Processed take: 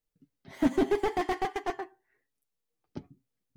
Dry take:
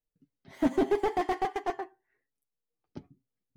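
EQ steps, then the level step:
dynamic equaliser 630 Hz, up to −5 dB, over −41 dBFS, Q 0.75
+3.0 dB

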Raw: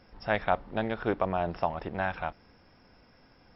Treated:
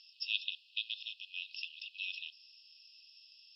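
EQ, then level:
linear-phase brick-wall high-pass 2,500 Hz
high-frequency loss of the air 87 metres
spectral tilt +3 dB per octave
+7.0 dB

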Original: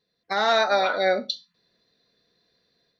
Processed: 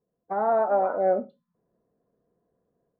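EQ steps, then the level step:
low-pass filter 1,000 Hz 24 dB per octave
0.0 dB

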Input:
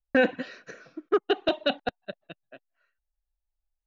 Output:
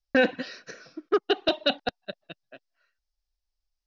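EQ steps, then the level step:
low-pass with resonance 5,200 Hz, resonance Q 4.5
0.0 dB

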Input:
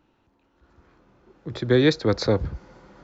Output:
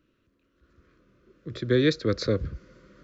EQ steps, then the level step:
Butterworth band-reject 820 Hz, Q 1.5
−3.5 dB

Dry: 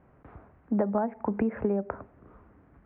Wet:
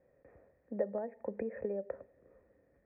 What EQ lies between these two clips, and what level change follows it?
formant resonators in series e
+3.0 dB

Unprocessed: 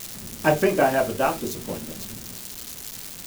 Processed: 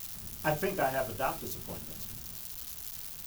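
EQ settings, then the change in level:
octave-band graphic EQ 125/250/500/1,000/2,000/4,000/8,000 Hz −3/−11/−9/−3/−7/−4/−7 dB
−2.0 dB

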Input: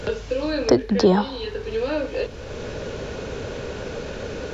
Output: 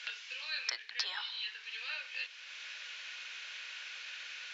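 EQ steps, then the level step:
four-pole ladder high-pass 1,800 Hz, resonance 30%
high-frequency loss of the air 99 metres
+4.5 dB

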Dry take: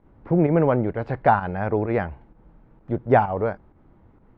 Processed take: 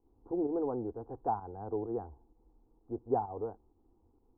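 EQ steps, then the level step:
transistor ladder low-pass 820 Hz, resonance 40%
phaser with its sweep stopped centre 600 Hz, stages 6
−4.0 dB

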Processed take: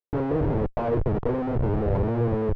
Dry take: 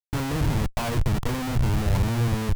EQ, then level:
low-pass filter 1,500 Hz 12 dB per octave
parametric band 450 Hz +14 dB 1.3 octaves
−4.0 dB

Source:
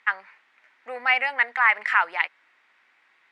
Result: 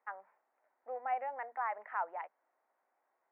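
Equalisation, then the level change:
transistor ladder low-pass 790 Hz, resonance 45%
spectral tilt +4.5 dB per octave
mains-hum notches 60/120/180/240 Hz
+2.0 dB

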